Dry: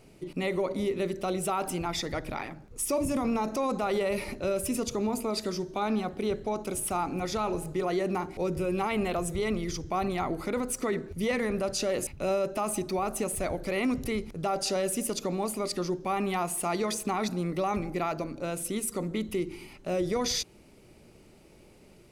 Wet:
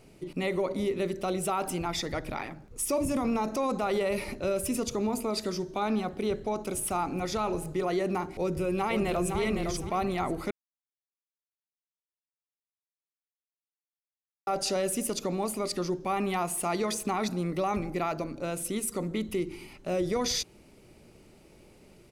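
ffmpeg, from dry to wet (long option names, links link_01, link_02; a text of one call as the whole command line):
ffmpeg -i in.wav -filter_complex "[0:a]asplit=2[link_01][link_02];[link_02]afade=type=in:start_time=8.36:duration=0.01,afade=type=out:start_time=9.38:duration=0.01,aecho=0:1:510|1020|1530:0.530884|0.132721|0.0331803[link_03];[link_01][link_03]amix=inputs=2:normalize=0,asplit=3[link_04][link_05][link_06];[link_04]atrim=end=10.51,asetpts=PTS-STARTPTS,afade=type=out:start_time=10.506:duration=0.004:curve=hsin[link_07];[link_05]atrim=start=10.51:end=14.47,asetpts=PTS-STARTPTS,volume=0[link_08];[link_06]atrim=start=14.47,asetpts=PTS-STARTPTS,afade=type=in:duration=0.004:curve=hsin[link_09];[link_07][link_08][link_09]concat=n=3:v=0:a=1" out.wav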